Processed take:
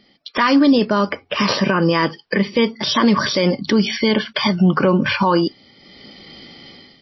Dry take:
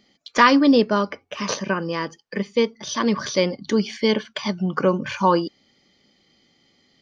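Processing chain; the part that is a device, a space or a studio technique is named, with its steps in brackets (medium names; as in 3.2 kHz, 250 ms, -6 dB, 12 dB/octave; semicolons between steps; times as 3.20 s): 2.05–2.47 s: low-pass 5.4 kHz 24 dB/octave; dynamic bell 470 Hz, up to -5 dB, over -35 dBFS, Q 5.5; low-bitrate web radio (level rider gain up to 15.5 dB; peak limiter -12 dBFS, peak gain reduction 11 dB; trim +6 dB; MP3 24 kbps 16 kHz)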